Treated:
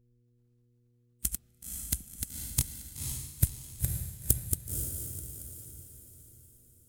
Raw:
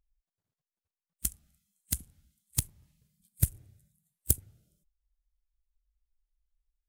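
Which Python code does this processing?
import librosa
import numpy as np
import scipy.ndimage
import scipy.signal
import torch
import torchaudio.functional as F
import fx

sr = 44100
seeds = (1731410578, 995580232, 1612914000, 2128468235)

y = fx.reverse_delay(x, sr, ms=260, wet_db=-5.0)
y = fx.echo_diffused(y, sr, ms=508, feedback_pct=44, wet_db=-4.5)
y = fx.dmg_buzz(y, sr, base_hz=120.0, harmonics=4, level_db=-68.0, tilt_db=-8, odd_only=False)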